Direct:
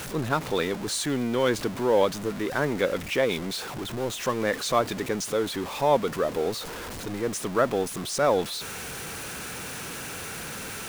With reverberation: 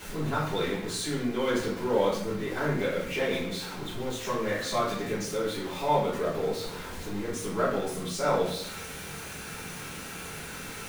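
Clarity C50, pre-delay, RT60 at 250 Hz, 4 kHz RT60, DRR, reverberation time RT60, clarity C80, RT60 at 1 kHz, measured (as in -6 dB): 2.5 dB, 3 ms, 0.85 s, 0.60 s, -11.0 dB, 0.75 s, 6.5 dB, 0.65 s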